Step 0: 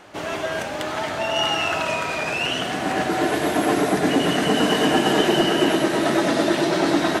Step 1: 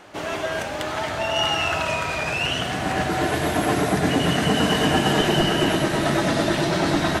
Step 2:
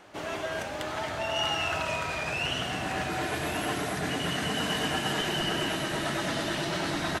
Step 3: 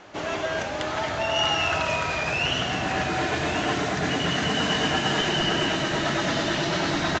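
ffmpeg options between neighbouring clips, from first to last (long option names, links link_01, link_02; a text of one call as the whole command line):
ffmpeg -i in.wav -af "asubboost=boost=6.5:cutoff=120" out.wav
ffmpeg -i in.wav -filter_complex "[0:a]acrossover=split=1000[link_01][link_02];[link_01]alimiter=limit=-19dB:level=0:latency=1:release=105[link_03];[link_02]aecho=1:1:1140:0.335[link_04];[link_03][link_04]amix=inputs=2:normalize=0,volume=-6.5dB" out.wav
ffmpeg -i in.wav -af "aresample=16000,aresample=44100,volume=5.5dB" out.wav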